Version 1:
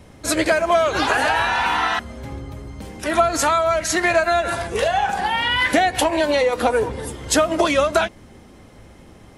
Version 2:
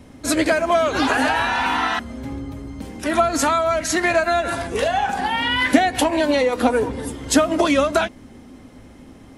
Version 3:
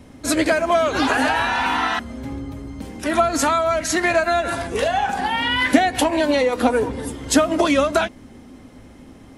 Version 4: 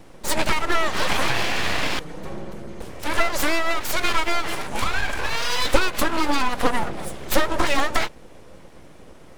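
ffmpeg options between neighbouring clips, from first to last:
-af "equalizer=f=260:t=o:w=0.31:g=12,volume=-1dB"
-af anull
-af "aeval=exprs='abs(val(0))':c=same"

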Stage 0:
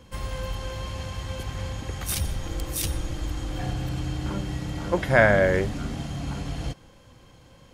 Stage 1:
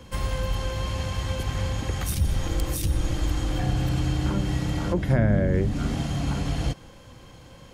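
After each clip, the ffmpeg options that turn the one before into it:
-filter_complex "[0:a]acrossover=split=330[a][b];[b]acompressor=threshold=-36dB:ratio=8[c];[a][c]amix=inputs=2:normalize=0,volume=5dB"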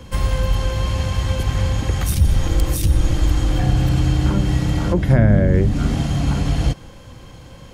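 -af "lowshelf=f=160:g=4.5,volume=5dB"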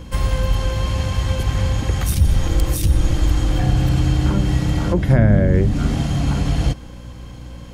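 -af "aeval=exprs='val(0)+0.0178*(sin(2*PI*60*n/s)+sin(2*PI*2*60*n/s)/2+sin(2*PI*3*60*n/s)/3+sin(2*PI*4*60*n/s)/4+sin(2*PI*5*60*n/s)/5)':c=same"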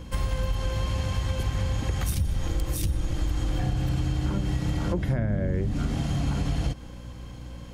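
-af "acompressor=threshold=-17dB:ratio=6,volume=-5dB"

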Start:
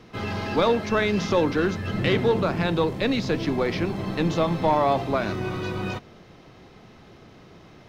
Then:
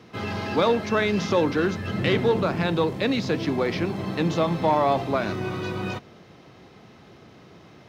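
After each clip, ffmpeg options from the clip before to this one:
-af "highpass=78"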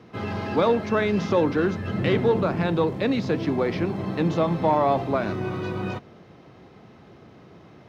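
-af "highshelf=f=2.4k:g=-9,volume=1dB"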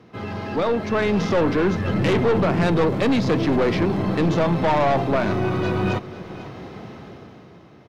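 -af "dynaudnorm=f=110:g=17:m=14dB,aeval=exprs='(tanh(5.62*val(0)+0.25)-tanh(0.25))/5.62':c=same,aecho=1:1:496:0.158"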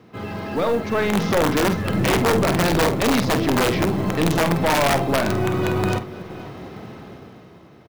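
-filter_complex "[0:a]acrusher=bits=7:mode=log:mix=0:aa=0.000001,aeval=exprs='(mod(4.73*val(0)+1,2)-1)/4.73':c=same,asplit=2[a][b];[b]adelay=49,volume=-10dB[c];[a][c]amix=inputs=2:normalize=0"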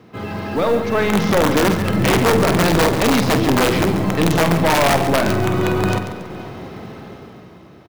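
-af "aecho=1:1:139|278|417|556:0.299|0.107|0.0387|0.0139,volume=3dB"

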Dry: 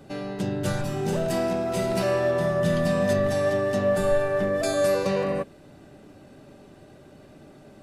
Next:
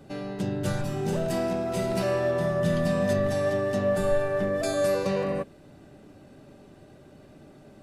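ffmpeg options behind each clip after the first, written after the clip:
-af "lowshelf=f=330:g=2.5,volume=-3dB"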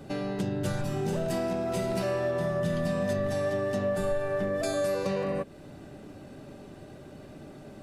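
-af "acompressor=threshold=-34dB:ratio=2.5,volume=4.5dB"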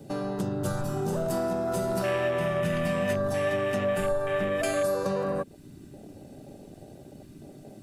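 -af "afwtdn=0.0126,crystalizer=i=8:c=0"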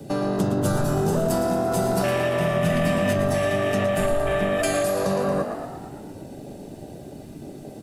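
-filter_complex "[0:a]asplit=2[a][b];[b]asplit=8[c][d][e][f][g][h][i][j];[c]adelay=114,afreqshift=46,volume=-9dB[k];[d]adelay=228,afreqshift=92,volume=-13.3dB[l];[e]adelay=342,afreqshift=138,volume=-17.6dB[m];[f]adelay=456,afreqshift=184,volume=-21.9dB[n];[g]adelay=570,afreqshift=230,volume=-26.2dB[o];[h]adelay=684,afreqshift=276,volume=-30.5dB[p];[i]adelay=798,afreqshift=322,volume=-34.8dB[q];[j]adelay=912,afreqshift=368,volume=-39.1dB[r];[k][l][m][n][o][p][q][r]amix=inputs=8:normalize=0[s];[a][s]amix=inputs=2:normalize=0,acrossover=split=260|3000[t][u][v];[u]acompressor=threshold=-28dB:ratio=6[w];[t][w][v]amix=inputs=3:normalize=0,volume=7dB"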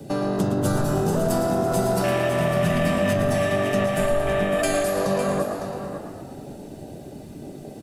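-af "aecho=1:1:556:0.335"

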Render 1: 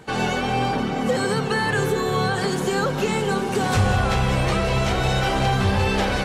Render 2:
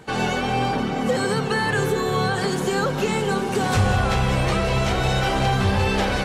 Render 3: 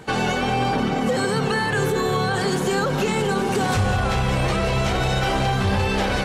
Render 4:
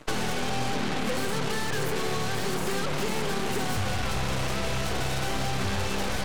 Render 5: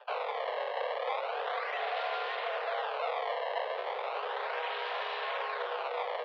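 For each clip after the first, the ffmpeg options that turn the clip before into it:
-af anull
-af "alimiter=limit=-16.5dB:level=0:latency=1,volume=3.5dB"
-filter_complex "[0:a]aeval=exprs='0.237*(cos(1*acos(clip(val(0)/0.237,-1,1)))-cos(1*PI/2))+0.0299*(cos(7*acos(clip(val(0)/0.237,-1,1)))-cos(7*PI/2))+0.0841*(cos(8*acos(clip(val(0)/0.237,-1,1)))-cos(8*PI/2))':c=same,acrossover=split=550|2100[a][b][c];[a]acompressor=threshold=-22dB:ratio=4[d];[b]acompressor=threshold=-31dB:ratio=4[e];[c]acompressor=threshold=-32dB:ratio=4[f];[d][e][f]amix=inputs=3:normalize=0,volume=-4dB"
-af "acrusher=samples=23:mix=1:aa=0.000001:lfo=1:lforange=36.8:lforate=0.35,highpass=f=180:t=q:w=0.5412,highpass=f=180:t=q:w=1.307,lowpass=f=3.5k:t=q:w=0.5176,lowpass=f=3.5k:t=q:w=0.7071,lowpass=f=3.5k:t=q:w=1.932,afreqshift=290,volume=-3.5dB"

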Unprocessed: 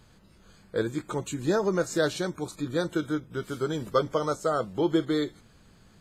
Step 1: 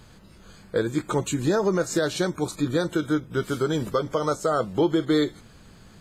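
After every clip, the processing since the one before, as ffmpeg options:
-af "alimiter=limit=-20dB:level=0:latency=1:release=199,volume=7dB"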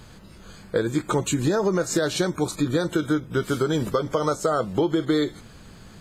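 -af "acompressor=threshold=-22dB:ratio=6,volume=4dB"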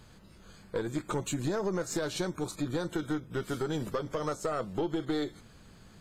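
-af "aeval=exprs='(tanh(5.01*val(0)+0.4)-tanh(0.4))/5.01':c=same,volume=-7.5dB"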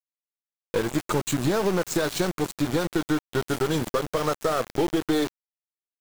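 -af "aeval=exprs='val(0)*gte(abs(val(0)),0.0178)':c=same,volume=8dB"

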